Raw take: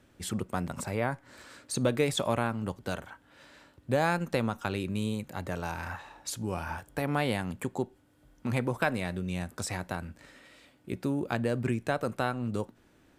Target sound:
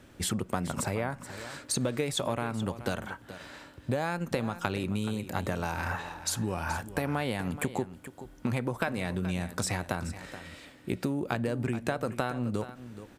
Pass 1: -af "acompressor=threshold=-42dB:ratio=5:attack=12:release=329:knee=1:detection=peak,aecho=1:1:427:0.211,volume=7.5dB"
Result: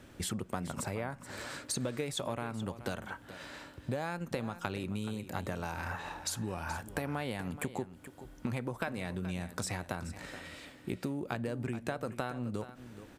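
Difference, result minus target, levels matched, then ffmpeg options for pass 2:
downward compressor: peak gain reduction +5.5 dB
-af "acompressor=threshold=-35dB:ratio=5:attack=12:release=329:knee=1:detection=peak,aecho=1:1:427:0.211,volume=7.5dB"

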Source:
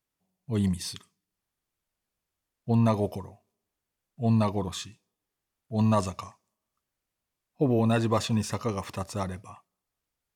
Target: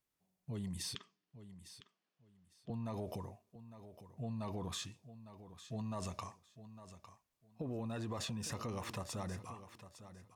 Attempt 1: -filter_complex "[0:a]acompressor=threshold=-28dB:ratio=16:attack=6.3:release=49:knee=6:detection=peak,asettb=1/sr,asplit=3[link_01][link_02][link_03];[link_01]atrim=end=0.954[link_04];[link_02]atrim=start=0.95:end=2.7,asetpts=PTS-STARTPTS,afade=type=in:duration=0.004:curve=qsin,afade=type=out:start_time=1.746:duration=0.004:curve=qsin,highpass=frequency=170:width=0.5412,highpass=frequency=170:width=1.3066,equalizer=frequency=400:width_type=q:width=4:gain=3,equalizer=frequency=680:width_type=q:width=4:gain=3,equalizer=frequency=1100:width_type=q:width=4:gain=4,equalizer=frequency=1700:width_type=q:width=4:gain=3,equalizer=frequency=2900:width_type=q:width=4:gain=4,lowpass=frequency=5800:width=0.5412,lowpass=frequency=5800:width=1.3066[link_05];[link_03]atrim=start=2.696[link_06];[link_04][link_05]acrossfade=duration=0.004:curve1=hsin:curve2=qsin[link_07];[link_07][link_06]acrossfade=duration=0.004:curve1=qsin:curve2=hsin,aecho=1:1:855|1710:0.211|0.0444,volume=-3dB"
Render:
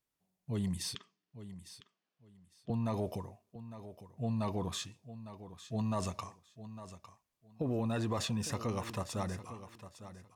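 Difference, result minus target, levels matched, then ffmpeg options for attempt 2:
downward compressor: peak gain reduction −7.5 dB
-filter_complex "[0:a]acompressor=threshold=-36dB:ratio=16:attack=6.3:release=49:knee=6:detection=peak,asettb=1/sr,asplit=3[link_01][link_02][link_03];[link_01]atrim=end=0.954[link_04];[link_02]atrim=start=0.95:end=2.7,asetpts=PTS-STARTPTS,afade=type=in:duration=0.004:curve=qsin,afade=type=out:start_time=1.746:duration=0.004:curve=qsin,highpass=frequency=170:width=0.5412,highpass=frequency=170:width=1.3066,equalizer=frequency=400:width_type=q:width=4:gain=3,equalizer=frequency=680:width_type=q:width=4:gain=3,equalizer=frequency=1100:width_type=q:width=4:gain=4,equalizer=frequency=1700:width_type=q:width=4:gain=3,equalizer=frequency=2900:width_type=q:width=4:gain=4,lowpass=frequency=5800:width=0.5412,lowpass=frequency=5800:width=1.3066[link_05];[link_03]atrim=start=2.696[link_06];[link_04][link_05]acrossfade=duration=0.004:curve1=hsin:curve2=qsin[link_07];[link_07][link_06]acrossfade=duration=0.004:curve1=qsin:curve2=hsin,aecho=1:1:855|1710:0.211|0.0444,volume=-3dB"

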